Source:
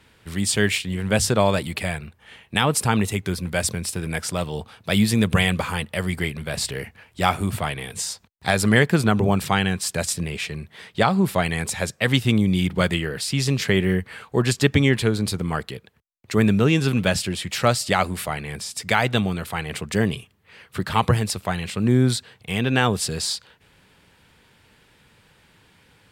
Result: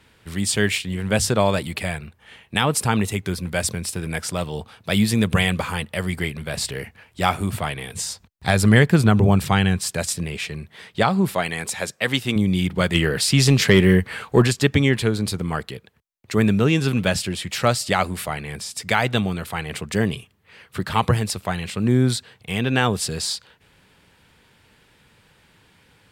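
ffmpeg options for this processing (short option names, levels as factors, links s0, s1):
-filter_complex "[0:a]asettb=1/sr,asplit=3[s0][s1][s2];[s0]atrim=end=7.954[s3];[s1]atrim=start=7.95:end=9.9,asetpts=PTS-STARTPTS,afade=t=in:d=0.004:c=qsin,afade=t=out:st=1.946:d=0.004:c=qsin,lowshelf=f=130:g=10.5[s4];[s2]atrim=start=9.896[s5];[s3][s4]acrossfade=d=0.004:c1=hsin:c2=qsin[s6];[s6][s5]acrossfade=d=0.004:c1=qsin:c2=hsin,asettb=1/sr,asplit=3[s7][s8][s9];[s7]atrim=end=11.344[s10];[s8]atrim=start=11.34:end=12.36,asetpts=PTS-STARTPTS,afade=t=in:d=0.004:c=qsin,afade=t=out:st=1.016:d=0.004:c=qsin,highpass=f=280:p=1[s11];[s9]atrim=start=12.356[s12];[s10][s11]acrossfade=d=0.004:c1=hsin:c2=qsin[s13];[s13][s12]acrossfade=d=0.004:c1=qsin:c2=hsin,asplit=3[s14][s15][s16];[s14]afade=t=out:st=12.94:d=0.02[s17];[s15]acontrast=71,afade=t=in:st=12.94:d=0.02,afade=t=out:st=14.46:d=0.02[s18];[s16]afade=t=in:st=14.46:d=0.02[s19];[s17][s18][s19]amix=inputs=3:normalize=0"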